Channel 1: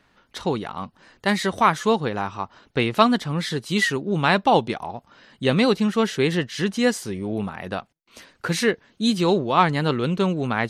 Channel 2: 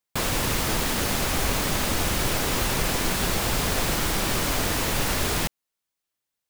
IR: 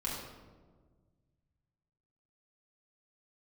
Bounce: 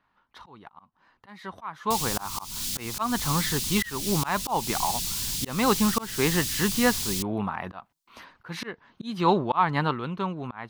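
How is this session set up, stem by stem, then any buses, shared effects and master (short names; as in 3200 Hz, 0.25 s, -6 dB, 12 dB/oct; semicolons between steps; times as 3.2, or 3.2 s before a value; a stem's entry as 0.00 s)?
1.72 s -13.5 dB -> 2.2 s -2 dB -> 9.79 s -2 dB -> 9.99 s -9 dB, 0.00 s, no send, ten-band EQ 500 Hz -5 dB, 1000 Hz +11 dB, 8000 Hz -12 dB
+2.0 dB, 1.75 s, no send, Chebyshev band-stop 170–4400 Hz, order 2; low shelf 410 Hz -11.5 dB; soft clip -25 dBFS, distortion -17 dB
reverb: off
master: auto swell 0.272 s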